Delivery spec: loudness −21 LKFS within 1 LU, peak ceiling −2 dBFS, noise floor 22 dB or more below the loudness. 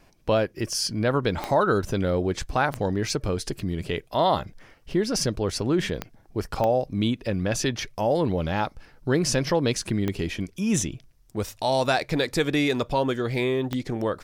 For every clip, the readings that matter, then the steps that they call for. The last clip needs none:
number of clicks 6; integrated loudness −25.5 LKFS; sample peak −9.5 dBFS; target loudness −21.0 LKFS
→ click removal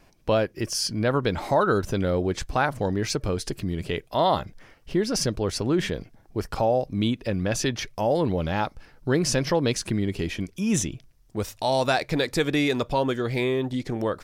number of clicks 0; integrated loudness −25.5 LKFS; sample peak −9.5 dBFS; target loudness −21.0 LKFS
→ level +4.5 dB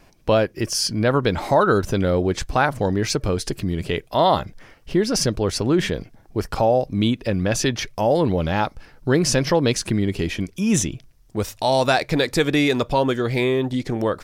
integrated loudness −21.0 LKFS; sample peak −5.0 dBFS; background noise floor −52 dBFS

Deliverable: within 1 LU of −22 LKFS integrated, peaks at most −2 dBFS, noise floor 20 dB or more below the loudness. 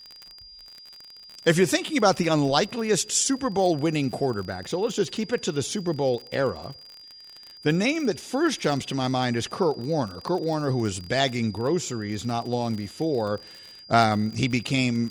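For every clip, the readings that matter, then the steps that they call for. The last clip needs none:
crackle rate 38 per second; interfering tone 4,800 Hz; level of the tone −44 dBFS; integrated loudness −25.0 LKFS; sample peak −5.0 dBFS; target loudness −22.0 LKFS
→ click removal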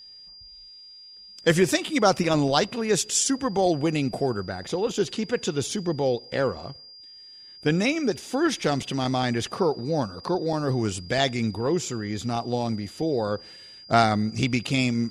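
crackle rate 0.066 per second; interfering tone 4,800 Hz; level of the tone −44 dBFS
→ notch filter 4,800 Hz, Q 30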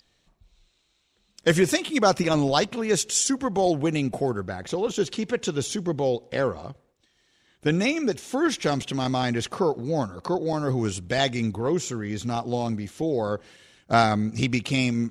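interfering tone none found; integrated loudness −25.0 LKFS; sample peak −5.5 dBFS; target loudness −22.0 LKFS
→ level +3 dB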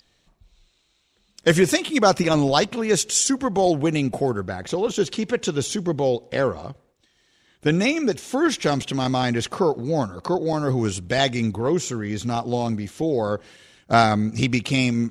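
integrated loudness −22.0 LKFS; sample peak −2.5 dBFS; background noise floor −66 dBFS

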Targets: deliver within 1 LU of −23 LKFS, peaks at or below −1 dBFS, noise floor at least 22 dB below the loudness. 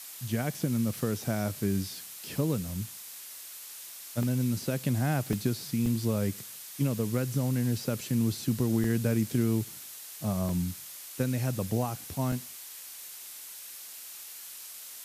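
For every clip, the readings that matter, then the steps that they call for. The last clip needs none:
number of dropouts 6; longest dropout 2.4 ms; background noise floor −45 dBFS; target noise floor −54 dBFS; integrated loudness −31.5 LKFS; sample peak −14.5 dBFS; target loudness −23.0 LKFS
→ repair the gap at 0:04.23/0:05.33/0:05.86/0:08.84/0:10.49/0:12.32, 2.4 ms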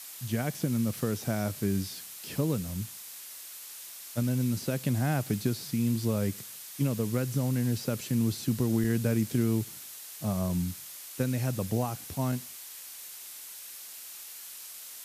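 number of dropouts 0; background noise floor −45 dBFS; target noise floor −54 dBFS
→ broadband denoise 9 dB, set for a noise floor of −45 dBFS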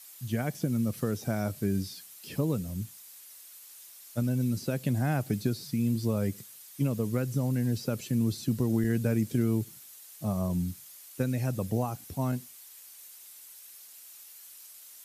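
background noise floor −51 dBFS; target noise floor −53 dBFS
→ broadband denoise 6 dB, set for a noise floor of −51 dBFS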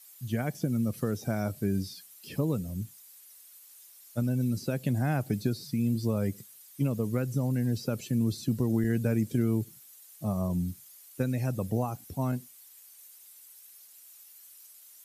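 background noise floor −54 dBFS; integrated loudness −30.5 LKFS; sample peak −15.0 dBFS; target loudness −23.0 LKFS
→ level +7.5 dB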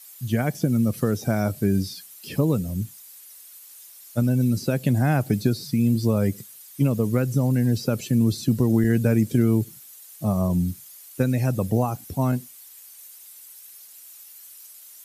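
integrated loudness −23.0 LKFS; sample peak −7.5 dBFS; background noise floor −46 dBFS

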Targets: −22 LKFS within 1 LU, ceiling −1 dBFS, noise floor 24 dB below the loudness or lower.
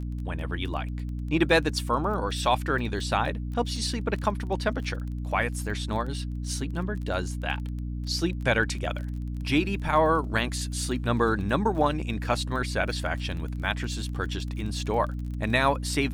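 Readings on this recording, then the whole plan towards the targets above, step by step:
crackle rate 22 per second; mains hum 60 Hz; hum harmonics up to 300 Hz; level of the hum −30 dBFS; integrated loudness −28.0 LKFS; sample peak −9.5 dBFS; target loudness −22.0 LKFS
→ click removal
mains-hum notches 60/120/180/240/300 Hz
level +6 dB

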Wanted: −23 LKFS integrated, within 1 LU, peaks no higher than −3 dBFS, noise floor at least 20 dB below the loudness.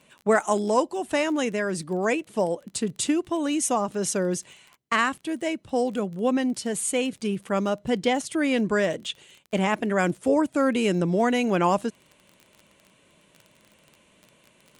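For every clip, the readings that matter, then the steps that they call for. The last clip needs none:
crackle rate 24 per second; integrated loudness −25.0 LKFS; sample peak −9.5 dBFS; target loudness −23.0 LKFS
→ click removal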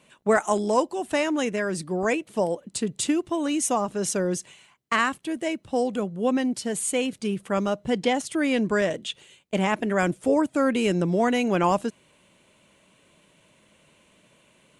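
crackle rate 0 per second; integrated loudness −25.0 LKFS; sample peak −9.5 dBFS; target loudness −23.0 LKFS
→ level +2 dB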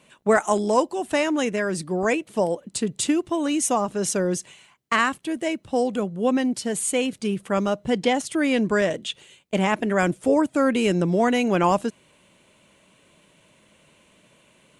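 integrated loudness −23.0 LKFS; sample peak −7.5 dBFS; background noise floor −59 dBFS

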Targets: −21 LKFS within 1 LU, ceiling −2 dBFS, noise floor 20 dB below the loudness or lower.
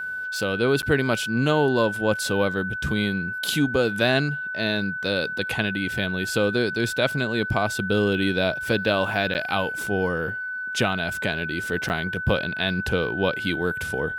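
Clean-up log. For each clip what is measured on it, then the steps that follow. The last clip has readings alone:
number of dropouts 3; longest dropout 9.3 ms; interfering tone 1,500 Hz; level of the tone −28 dBFS; integrated loudness −24.0 LKFS; sample peak −7.0 dBFS; target loudness −21.0 LKFS
→ repair the gap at 0:00.82/0:09.34/0:11.89, 9.3 ms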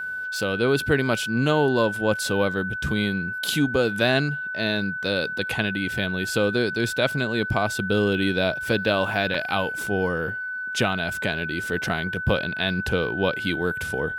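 number of dropouts 0; interfering tone 1,500 Hz; level of the tone −28 dBFS
→ notch filter 1,500 Hz, Q 30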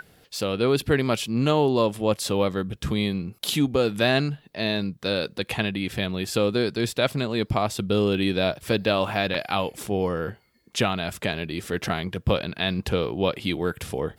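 interfering tone none found; integrated loudness −25.0 LKFS; sample peak −7.5 dBFS; target loudness −21.0 LKFS
→ level +4 dB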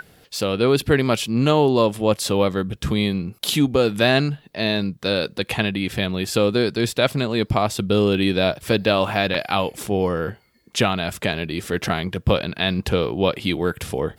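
integrated loudness −21.0 LKFS; sample peak −3.5 dBFS; background noise floor −56 dBFS

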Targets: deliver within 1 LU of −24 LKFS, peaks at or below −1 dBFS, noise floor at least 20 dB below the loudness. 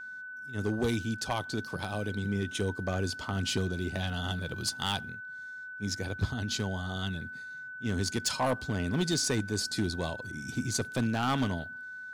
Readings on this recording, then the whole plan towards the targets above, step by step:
share of clipped samples 0.7%; peaks flattened at −22.0 dBFS; interfering tone 1,500 Hz; level of the tone −40 dBFS; integrated loudness −32.5 LKFS; sample peak −22.0 dBFS; target loudness −24.0 LKFS
→ clipped peaks rebuilt −22 dBFS
notch filter 1,500 Hz, Q 30
level +8.5 dB

